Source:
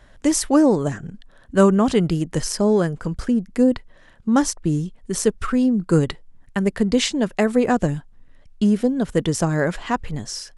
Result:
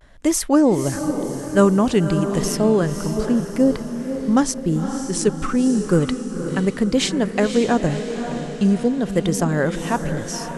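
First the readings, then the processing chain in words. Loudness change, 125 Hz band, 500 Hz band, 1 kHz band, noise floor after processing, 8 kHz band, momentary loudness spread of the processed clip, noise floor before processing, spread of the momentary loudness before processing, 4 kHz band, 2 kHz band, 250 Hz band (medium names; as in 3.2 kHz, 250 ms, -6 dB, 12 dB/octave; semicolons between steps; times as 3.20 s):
+0.5 dB, +1.0 dB, +1.0 dB, +0.5 dB, -31 dBFS, +1.0 dB, 9 LU, -50 dBFS, 11 LU, +0.5 dB, +0.5 dB, +1.0 dB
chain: vibrato 0.89 Hz 81 cents; echo that smears into a reverb 534 ms, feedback 51%, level -8 dB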